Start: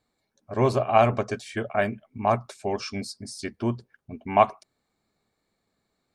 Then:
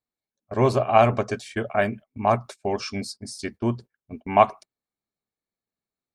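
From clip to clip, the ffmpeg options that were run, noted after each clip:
ffmpeg -i in.wav -af "agate=range=-20dB:threshold=-40dB:ratio=16:detection=peak,volume=2dB" out.wav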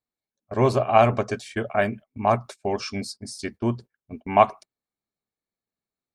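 ffmpeg -i in.wav -af anull out.wav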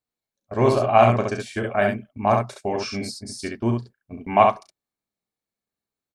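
ffmpeg -i in.wav -af "aecho=1:1:35|68:0.355|0.631" out.wav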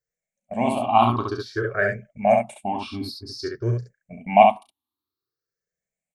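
ffmpeg -i in.wav -af "afftfilt=real='re*pow(10,23/40*sin(2*PI*(0.55*log(max(b,1)*sr/1024/100)/log(2)-(0.53)*(pts-256)/sr)))':imag='im*pow(10,23/40*sin(2*PI*(0.55*log(max(b,1)*sr/1024/100)/log(2)-(0.53)*(pts-256)/sr)))':win_size=1024:overlap=0.75,volume=-6.5dB" out.wav

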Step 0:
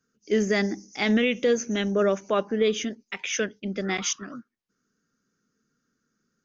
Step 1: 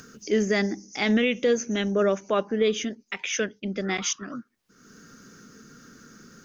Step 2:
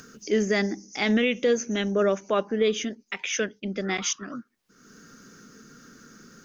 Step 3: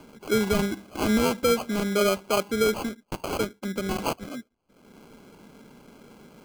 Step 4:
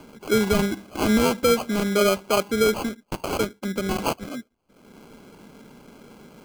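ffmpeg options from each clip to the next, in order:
ffmpeg -i in.wav -af "acompressor=mode=upward:threshold=-28dB:ratio=2.5" out.wav
ffmpeg -i in.wav -af "equalizer=frequency=88:width_type=o:width=1.4:gain=-3.5" out.wav
ffmpeg -i in.wav -af "acrusher=samples=24:mix=1:aa=0.000001" out.wav
ffmpeg -i in.wav -af "volume=3dB" -ar 44100 -c:a aac -b:a 160k out.aac

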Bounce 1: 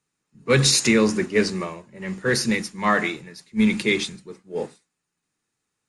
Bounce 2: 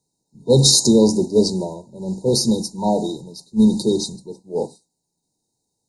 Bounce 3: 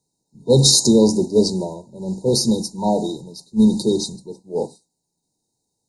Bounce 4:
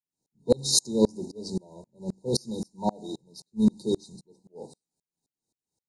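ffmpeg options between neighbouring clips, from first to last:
ffmpeg -i in.wav -af "afftfilt=real='re*(1-between(b*sr/4096,1000,3700))':imag='im*(1-between(b*sr/4096,1000,3700))':win_size=4096:overlap=0.75,volume=5dB" out.wav
ffmpeg -i in.wav -af anull out.wav
ffmpeg -i in.wav -af "aeval=exprs='val(0)*pow(10,-32*if(lt(mod(-3.8*n/s,1),2*abs(-3.8)/1000),1-mod(-3.8*n/s,1)/(2*abs(-3.8)/1000),(mod(-3.8*n/s,1)-2*abs(-3.8)/1000)/(1-2*abs(-3.8)/1000))/20)':channel_layout=same,volume=-3dB" out.wav

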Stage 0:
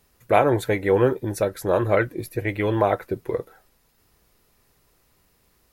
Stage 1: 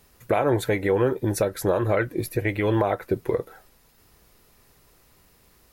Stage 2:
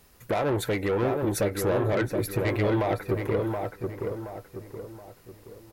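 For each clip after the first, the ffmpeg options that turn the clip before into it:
ffmpeg -i in.wav -filter_complex "[0:a]asplit=2[link_01][link_02];[link_02]acompressor=threshold=-28dB:ratio=6,volume=-2dB[link_03];[link_01][link_03]amix=inputs=2:normalize=0,alimiter=limit=-12dB:level=0:latency=1:release=190" out.wav
ffmpeg -i in.wav -filter_complex "[0:a]asoftclip=type=tanh:threshold=-21dB,asplit=2[link_01][link_02];[link_02]adelay=724,lowpass=frequency=1800:poles=1,volume=-4dB,asplit=2[link_03][link_04];[link_04]adelay=724,lowpass=frequency=1800:poles=1,volume=0.43,asplit=2[link_05][link_06];[link_06]adelay=724,lowpass=frequency=1800:poles=1,volume=0.43,asplit=2[link_07][link_08];[link_08]adelay=724,lowpass=frequency=1800:poles=1,volume=0.43,asplit=2[link_09][link_10];[link_10]adelay=724,lowpass=frequency=1800:poles=1,volume=0.43[link_11];[link_01][link_03][link_05][link_07][link_09][link_11]amix=inputs=6:normalize=0" out.wav

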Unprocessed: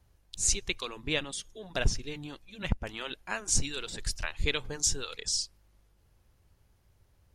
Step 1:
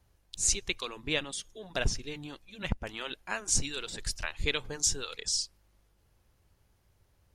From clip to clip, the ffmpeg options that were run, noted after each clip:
ffmpeg -i in.wav -af "lowshelf=frequency=170:gain=-3.5" out.wav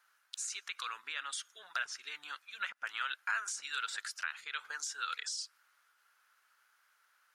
ffmpeg -i in.wav -af "alimiter=level_in=1dB:limit=-24dB:level=0:latency=1:release=49,volume=-1dB,acompressor=threshold=-38dB:ratio=6,highpass=frequency=1400:width_type=q:width=5.4,volume=1dB" out.wav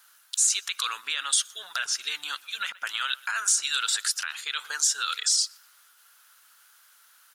ffmpeg -i in.wav -filter_complex "[0:a]asplit=2[link_01][link_02];[link_02]adelay=122,lowpass=frequency=2900:poles=1,volume=-23dB,asplit=2[link_03][link_04];[link_04]adelay=122,lowpass=frequency=2900:poles=1,volume=0.49,asplit=2[link_05][link_06];[link_06]adelay=122,lowpass=frequency=2900:poles=1,volume=0.49[link_07];[link_01][link_03][link_05][link_07]amix=inputs=4:normalize=0,alimiter=level_in=4.5dB:limit=-24dB:level=0:latency=1:release=21,volume=-4.5dB,aexciter=amount=1.9:drive=7.8:freq=3000,volume=8.5dB" out.wav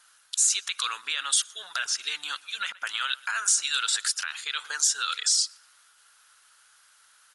ffmpeg -i in.wav -ar 48000 -c:a ac3 -b:a 64k out.ac3

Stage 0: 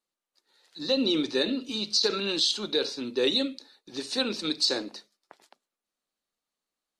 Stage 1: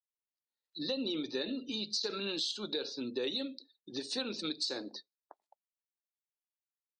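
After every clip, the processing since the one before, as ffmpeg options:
ffmpeg -i in.wav -af "afftdn=noise_reduction=33:noise_floor=-45,acompressor=threshold=-36dB:ratio=3" out.wav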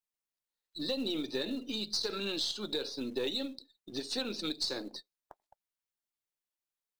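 ffmpeg -i in.wav -filter_complex "[0:a]aeval=exprs='if(lt(val(0),0),0.708*val(0),val(0))':channel_layout=same,asplit=2[link_01][link_02];[link_02]acrusher=bits=4:mode=log:mix=0:aa=0.000001,volume=-5dB[link_03];[link_01][link_03]amix=inputs=2:normalize=0,volume=-1.5dB" out.wav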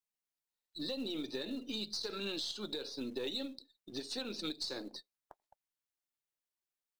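ffmpeg -i in.wav -af "alimiter=level_in=1dB:limit=-24dB:level=0:latency=1:release=201,volume=-1dB,volume=-3dB" out.wav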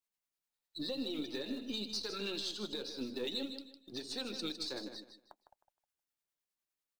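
ffmpeg -i in.wav -filter_complex "[0:a]acrossover=split=870[link_01][link_02];[link_01]aeval=exprs='val(0)*(1-0.5/2+0.5/2*cos(2*PI*9.9*n/s))':channel_layout=same[link_03];[link_02]aeval=exprs='val(0)*(1-0.5/2-0.5/2*cos(2*PI*9.9*n/s))':channel_layout=same[link_04];[link_03][link_04]amix=inputs=2:normalize=0,aecho=1:1:156|312|468:0.335|0.0837|0.0209,volume=2dB" out.wav

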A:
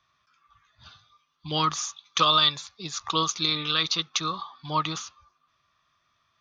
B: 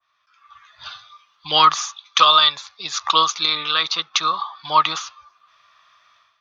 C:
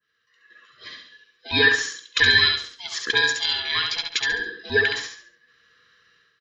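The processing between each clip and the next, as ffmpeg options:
ffmpeg -i in.wav -filter_complex "[0:a]acrossover=split=590 5800:gain=0.112 1 0.251[link_01][link_02][link_03];[link_01][link_02][link_03]amix=inputs=3:normalize=0,dynaudnorm=framelen=280:gausssize=3:maxgain=15dB,adynamicequalizer=threshold=0.0316:dfrequency=1600:dqfactor=0.7:tfrequency=1600:tqfactor=0.7:attack=5:release=100:ratio=0.375:range=3.5:mode=cutabove:tftype=highshelf,volume=1dB" out.wav
ffmpeg -i in.wav -filter_complex "[0:a]afftfilt=real='real(if(lt(b,1008),b+24*(1-2*mod(floor(b/24),2)),b),0)':imag='imag(if(lt(b,1008),b+24*(1-2*mod(floor(b/24),2)),b),0)':win_size=2048:overlap=0.75,asplit=2[link_01][link_02];[link_02]aecho=0:1:69|138|207|276:0.631|0.215|0.0729|0.0248[link_03];[link_01][link_03]amix=inputs=2:normalize=0,volume=-5dB" out.wav

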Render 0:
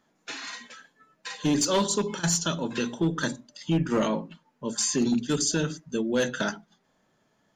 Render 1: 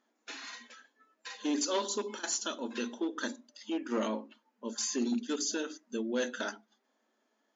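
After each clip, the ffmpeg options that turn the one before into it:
ffmpeg -i in.wav -af "afftfilt=real='re*between(b*sr/4096,210,7300)':imag='im*between(b*sr/4096,210,7300)':win_size=4096:overlap=0.75,volume=-7dB" out.wav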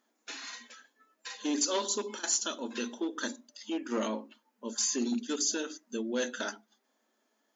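ffmpeg -i in.wav -af "highshelf=frequency=6500:gain=9.5" out.wav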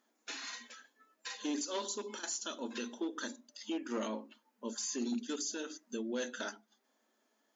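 ffmpeg -i in.wav -af "alimiter=level_in=3.5dB:limit=-24dB:level=0:latency=1:release=369,volume=-3.5dB,volume=-1dB" out.wav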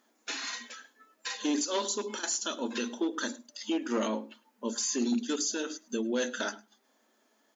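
ffmpeg -i in.wav -af "aecho=1:1:105:0.0708,volume=7dB" out.wav

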